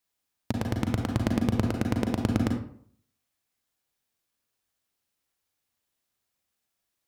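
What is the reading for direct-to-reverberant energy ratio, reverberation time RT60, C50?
3.0 dB, 0.60 s, 5.5 dB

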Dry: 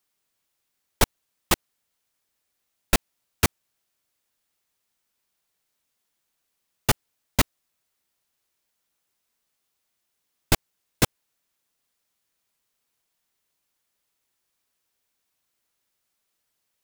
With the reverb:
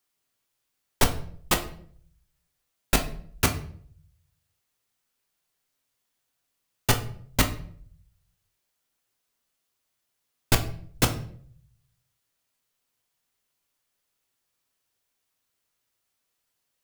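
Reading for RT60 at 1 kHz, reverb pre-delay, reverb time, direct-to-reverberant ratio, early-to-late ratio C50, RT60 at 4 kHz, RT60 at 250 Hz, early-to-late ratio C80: 0.50 s, 7 ms, 0.55 s, 4.5 dB, 12.0 dB, 0.40 s, 0.70 s, 16.0 dB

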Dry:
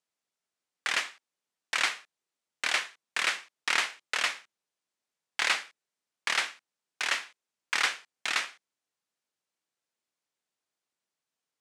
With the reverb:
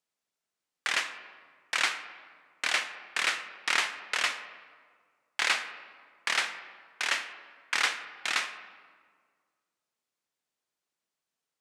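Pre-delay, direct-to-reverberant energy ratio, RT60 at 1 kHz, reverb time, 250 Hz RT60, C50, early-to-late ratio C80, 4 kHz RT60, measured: 34 ms, 10.0 dB, 1.7 s, 1.8 s, 2.0 s, 10.5 dB, 12.0 dB, 1.1 s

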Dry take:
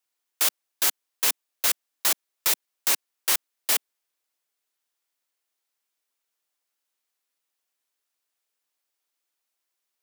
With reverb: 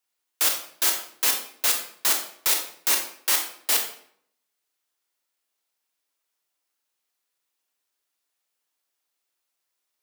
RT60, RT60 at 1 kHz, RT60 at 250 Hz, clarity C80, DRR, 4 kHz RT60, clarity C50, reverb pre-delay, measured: 0.60 s, 0.55 s, 0.70 s, 10.0 dB, 2.5 dB, 0.45 s, 6.5 dB, 23 ms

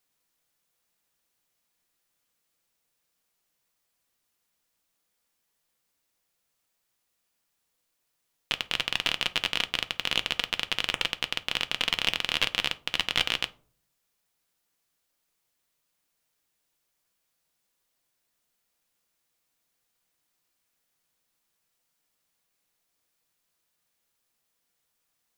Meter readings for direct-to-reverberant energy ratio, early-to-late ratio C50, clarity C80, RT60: 10.5 dB, 20.0 dB, 26.0 dB, 0.45 s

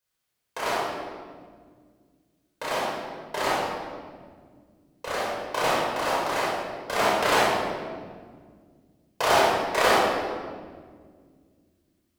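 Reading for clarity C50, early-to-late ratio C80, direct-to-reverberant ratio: -2.5 dB, 1.0 dB, -6.0 dB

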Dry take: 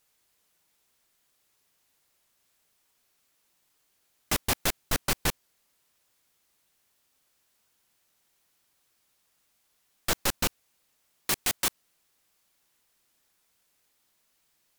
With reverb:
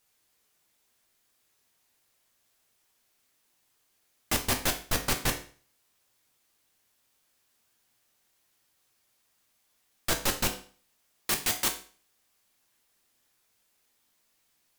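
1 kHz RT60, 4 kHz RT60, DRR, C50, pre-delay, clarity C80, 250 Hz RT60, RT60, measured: 0.40 s, 0.40 s, 3.5 dB, 11.0 dB, 7 ms, 15.0 dB, 0.45 s, 0.40 s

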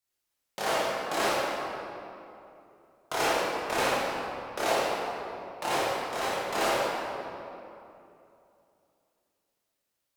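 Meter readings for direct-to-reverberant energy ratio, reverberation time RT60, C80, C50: -8.5 dB, 2.8 s, -1.5 dB, -3.5 dB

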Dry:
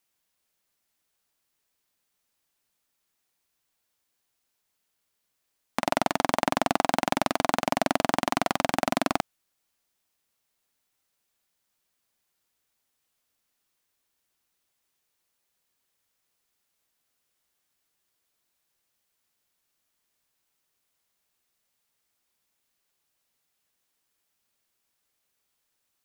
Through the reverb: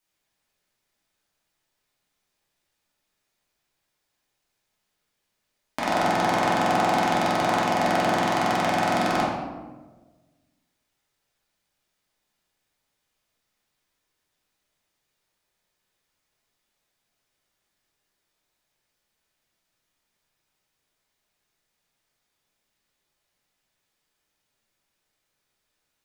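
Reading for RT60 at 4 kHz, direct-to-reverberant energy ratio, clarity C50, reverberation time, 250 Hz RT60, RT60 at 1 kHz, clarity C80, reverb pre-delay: 0.70 s, -8.0 dB, 0.5 dB, 1.3 s, 1.5 s, 1.1 s, 3.0 dB, 3 ms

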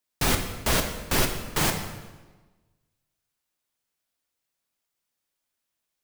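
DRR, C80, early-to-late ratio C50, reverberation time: 4.0 dB, 9.0 dB, 7.0 dB, 1.3 s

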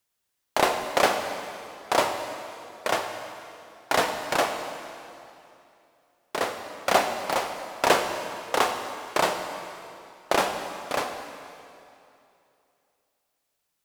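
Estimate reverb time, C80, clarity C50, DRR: 2.7 s, 7.5 dB, 6.5 dB, 6.0 dB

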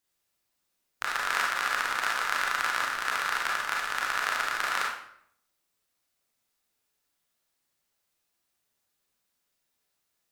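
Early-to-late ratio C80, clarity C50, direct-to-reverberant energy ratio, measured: 6.5 dB, 2.5 dB, -2.5 dB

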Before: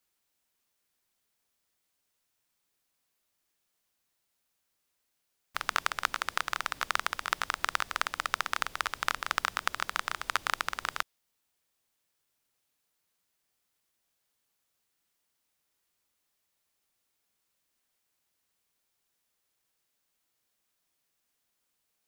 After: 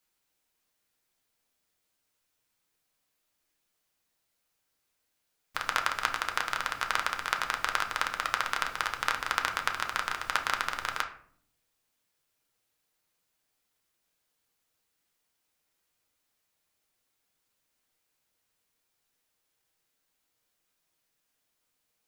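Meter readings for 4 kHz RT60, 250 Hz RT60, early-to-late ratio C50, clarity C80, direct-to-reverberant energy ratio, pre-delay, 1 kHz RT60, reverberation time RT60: 0.35 s, 1.0 s, 10.5 dB, 15.0 dB, 3.0 dB, 6 ms, 0.50 s, 0.60 s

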